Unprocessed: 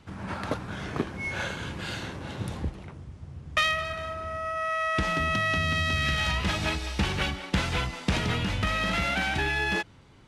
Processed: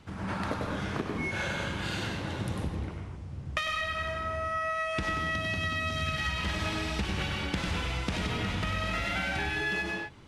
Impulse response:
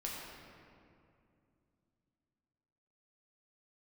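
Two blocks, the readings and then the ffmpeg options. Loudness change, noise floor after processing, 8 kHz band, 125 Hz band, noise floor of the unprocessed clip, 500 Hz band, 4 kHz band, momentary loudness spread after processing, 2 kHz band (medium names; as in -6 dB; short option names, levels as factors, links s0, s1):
-3.5 dB, -40 dBFS, -4.0 dB, -2.5 dB, -48 dBFS, -2.5 dB, -4.0 dB, 4 LU, -3.5 dB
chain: -filter_complex "[0:a]asplit=2[s0][s1];[1:a]atrim=start_sample=2205,afade=t=out:st=0.22:d=0.01,atrim=end_sample=10143,adelay=97[s2];[s1][s2]afir=irnorm=-1:irlink=0,volume=0.891[s3];[s0][s3]amix=inputs=2:normalize=0,acompressor=threshold=0.0398:ratio=6"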